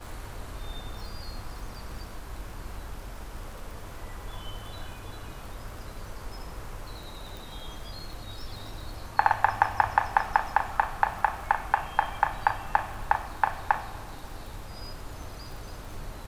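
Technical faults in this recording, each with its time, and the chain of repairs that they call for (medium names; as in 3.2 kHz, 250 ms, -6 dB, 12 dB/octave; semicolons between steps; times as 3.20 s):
crackle 47 per s -39 dBFS
7.37 s: pop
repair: de-click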